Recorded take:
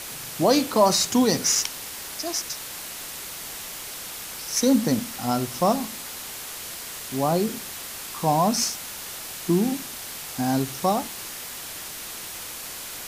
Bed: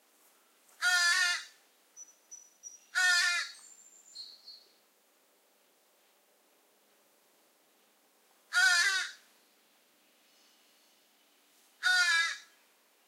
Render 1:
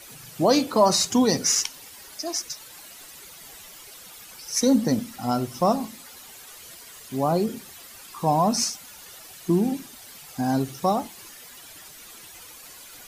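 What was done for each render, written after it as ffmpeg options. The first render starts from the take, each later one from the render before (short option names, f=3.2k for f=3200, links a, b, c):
-af "afftdn=nr=12:nf=-36"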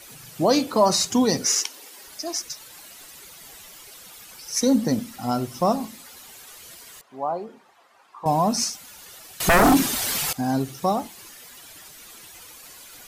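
-filter_complex "[0:a]asettb=1/sr,asplit=3[a][b][c];[a]atrim=end=1.454[d];[b]atrim=start=1.45:end=2.03,asetpts=PTS-STARTPTS,afade=t=in:d=0.004:c=qsin,afade=t=out:st=0.576:d=0.004:c=qsin,highpass=f=350:t=q:w=1.8[e];[c]atrim=start=2.026[f];[d][e]acrossfade=d=0.004:c1=hsin:c2=qsin[g];[g][f]acrossfade=d=0.004:c1=qsin:c2=hsin,asettb=1/sr,asplit=3[h][i][j];[h]atrim=end=7.014[k];[i]atrim=start=7.01:end=8.26,asetpts=PTS-STARTPTS,afade=t=in:d=0.004:c=qsin,afade=t=out:st=1.246:d=0.004:c=qsin,bandpass=f=870:t=q:w=1.6[l];[j]atrim=start=8.256[m];[k][l]acrossfade=d=0.004:c1=hsin:c2=qsin[n];[n][m]acrossfade=d=0.004:c1=qsin:c2=hsin,asettb=1/sr,asplit=3[o][p][q];[o]atrim=end=9.404[r];[p]atrim=start=9.4:end=10.33,asetpts=PTS-STARTPTS,afade=t=in:d=0.004:c=qsin,afade=t=out:st=0.926:d=0.004:c=qsin,aeval=exprs='0.266*sin(PI/2*5.62*val(0)/0.266)':c=same[s];[q]atrim=start=10.326[t];[r][s]acrossfade=d=0.004:c1=hsin:c2=qsin[u];[u][t]acrossfade=d=0.004:c1=qsin:c2=hsin"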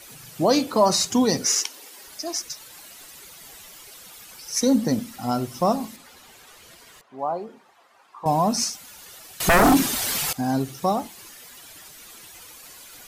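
-filter_complex "[0:a]asettb=1/sr,asplit=3[a][b][c];[a]atrim=end=5.964[d];[b]atrim=start=5.96:end=7.19,asetpts=PTS-STARTPTS,afade=t=in:d=0.004:c=qsin,afade=t=out:st=1.226:d=0.004:c=qsin,aemphasis=mode=reproduction:type=cd[e];[c]atrim=start=7.186[f];[d][e]acrossfade=d=0.004:c1=hsin:c2=qsin[g];[g][f]acrossfade=d=0.004:c1=qsin:c2=hsin"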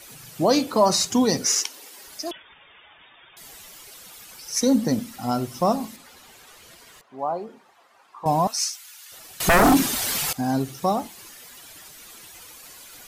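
-filter_complex "[0:a]asettb=1/sr,asplit=3[a][b][c];[a]atrim=end=2.314[d];[b]atrim=start=2.31:end=3.37,asetpts=PTS-STARTPTS,afade=t=in:d=0.004:c=qsin,afade=t=out:st=1.056:d=0.004:c=qsin,lowpass=f=3.1k:t=q:w=0.5098,lowpass=f=3.1k:t=q:w=0.6013,lowpass=f=3.1k:t=q:w=0.9,lowpass=f=3.1k:t=q:w=2.563,afreqshift=-3700[e];[c]atrim=start=3.366[f];[d][e]acrossfade=d=0.004:c1=hsin:c2=qsin[g];[g][f]acrossfade=d=0.004:c1=qsin:c2=hsin,asettb=1/sr,asplit=3[h][i][j];[h]atrim=end=8.474[k];[i]atrim=start=8.47:end=9.12,asetpts=PTS-STARTPTS,afade=t=in:d=0.004:c=qsin,afade=t=out:st=0.646:d=0.004:c=qsin,highpass=1.5k[l];[j]atrim=start=9.116[m];[k][l]acrossfade=d=0.004:c1=hsin:c2=qsin[n];[n][m]acrossfade=d=0.004:c1=qsin:c2=hsin"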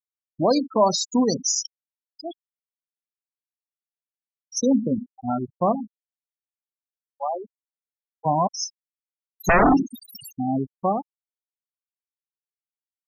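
-af "afftfilt=real='re*gte(hypot(re,im),0.158)':imag='im*gte(hypot(re,im),0.158)':win_size=1024:overlap=0.75,adynamicequalizer=threshold=0.0178:dfrequency=120:dqfactor=1:tfrequency=120:tqfactor=1:attack=5:release=100:ratio=0.375:range=2.5:mode=cutabove:tftype=bell"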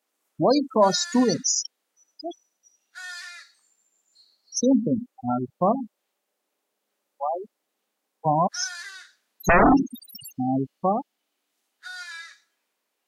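-filter_complex "[1:a]volume=-11dB[a];[0:a][a]amix=inputs=2:normalize=0"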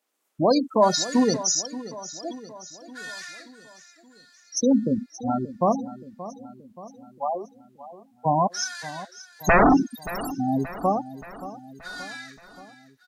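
-af "aecho=1:1:577|1154|1731|2308|2885:0.168|0.094|0.0526|0.0295|0.0165"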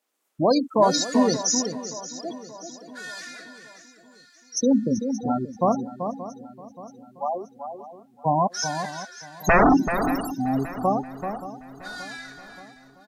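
-filter_complex "[0:a]asplit=2[a][b];[b]adelay=384.8,volume=-8dB,highshelf=f=4k:g=-8.66[c];[a][c]amix=inputs=2:normalize=0"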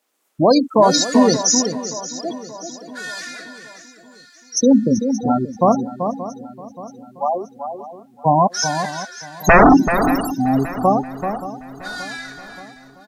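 -af "volume=7dB,alimiter=limit=-3dB:level=0:latency=1"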